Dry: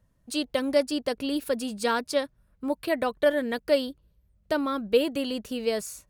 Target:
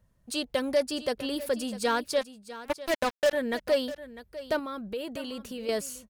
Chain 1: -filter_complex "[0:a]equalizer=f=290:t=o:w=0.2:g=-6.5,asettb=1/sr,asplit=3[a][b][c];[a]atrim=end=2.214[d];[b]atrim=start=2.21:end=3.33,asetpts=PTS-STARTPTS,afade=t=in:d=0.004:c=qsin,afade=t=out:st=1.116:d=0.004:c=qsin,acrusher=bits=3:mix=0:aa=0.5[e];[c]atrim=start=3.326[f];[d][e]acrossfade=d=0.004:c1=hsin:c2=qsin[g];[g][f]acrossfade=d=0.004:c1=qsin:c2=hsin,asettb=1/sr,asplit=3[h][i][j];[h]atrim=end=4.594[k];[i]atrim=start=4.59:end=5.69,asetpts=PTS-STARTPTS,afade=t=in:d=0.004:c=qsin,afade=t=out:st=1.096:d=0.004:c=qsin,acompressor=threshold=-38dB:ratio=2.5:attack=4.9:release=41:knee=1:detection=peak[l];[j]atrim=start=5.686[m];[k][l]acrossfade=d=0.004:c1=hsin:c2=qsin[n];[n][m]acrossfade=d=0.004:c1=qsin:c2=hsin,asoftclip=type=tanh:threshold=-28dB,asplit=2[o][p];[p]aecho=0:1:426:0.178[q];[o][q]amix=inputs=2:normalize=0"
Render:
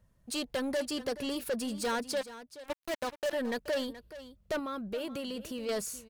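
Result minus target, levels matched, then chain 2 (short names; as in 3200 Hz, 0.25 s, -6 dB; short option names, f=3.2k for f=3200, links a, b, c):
soft clip: distortion +12 dB; echo 0.224 s early
-filter_complex "[0:a]equalizer=f=290:t=o:w=0.2:g=-6.5,asettb=1/sr,asplit=3[a][b][c];[a]atrim=end=2.214[d];[b]atrim=start=2.21:end=3.33,asetpts=PTS-STARTPTS,afade=t=in:d=0.004:c=qsin,afade=t=out:st=1.116:d=0.004:c=qsin,acrusher=bits=3:mix=0:aa=0.5[e];[c]atrim=start=3.326[f];[d][e]acrossfade=d=0.004:c1=hsin:c2=qsin[g];[g][f]acrossfade=d=0.004:c1=qsin:c2=hsin,asettb=1/sr,asplit=3[h][i][j];[h]atrim=end=4.594[k];[i]atrim=start=4.59:end=5.69,asetpts=PTS-STARTPTS,afade=t=in:d=0.004:c=qsin,afade=t=out:st=1.096:d=0.004:c=qsin,acompressor=threshold=-38dB:ratio=2.5:attack=4.9:release=41:knee=1:detection=peak[l];[j]atrim=start=5.686[m];[k][l]acrossfade=d=0.004:c1=hsin:c2=qsin[n];[n][m]acrossfade=d=0.004:c1=qsin:c2=hsin,asoftclip=type=tanh:threshold=-16dB,asplit=2[o][p];[p]aecho=0:1:650:0.178[q];[o][q]amix=inputs=2:normalize=0"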